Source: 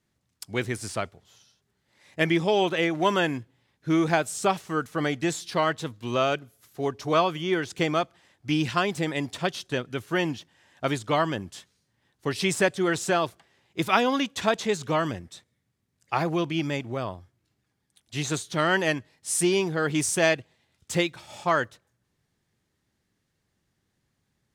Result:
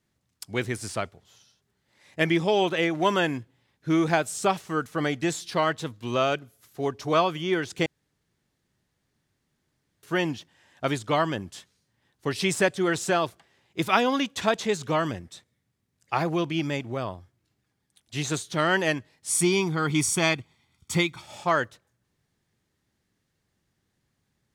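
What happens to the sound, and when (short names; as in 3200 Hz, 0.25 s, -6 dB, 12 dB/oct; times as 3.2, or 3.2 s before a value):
7.86–10.03 room tone
19.29–21.22 comb 0.9 ms, depth 63%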